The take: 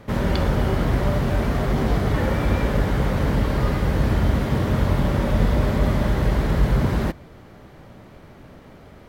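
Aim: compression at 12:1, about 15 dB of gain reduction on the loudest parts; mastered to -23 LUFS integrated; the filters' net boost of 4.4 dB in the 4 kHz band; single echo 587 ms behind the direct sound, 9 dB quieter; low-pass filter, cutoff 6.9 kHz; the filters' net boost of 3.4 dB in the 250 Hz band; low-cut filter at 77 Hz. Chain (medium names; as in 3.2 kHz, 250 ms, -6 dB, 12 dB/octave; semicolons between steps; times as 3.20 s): high-pass 77 Hz; low-pass 6.9 kHz; peaking EQ 250 Hz +4.5 dB; peaking EQ 4 kHz +6 dB; compression 12:1, threshold -31 dBFS; delay 587 ms -9 dB; trim +12.5 dB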